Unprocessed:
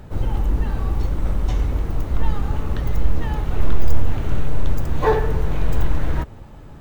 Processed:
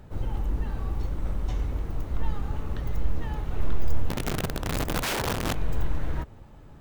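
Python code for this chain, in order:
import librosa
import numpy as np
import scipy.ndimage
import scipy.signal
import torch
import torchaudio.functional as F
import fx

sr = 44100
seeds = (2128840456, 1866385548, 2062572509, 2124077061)

y = fx.overflow_wrap(x, sr, gain_db=15.0, at=(4.08, 5.53), fade=0.02)
y = F.gain(torch.from_numpy(y), -8.0).numpy()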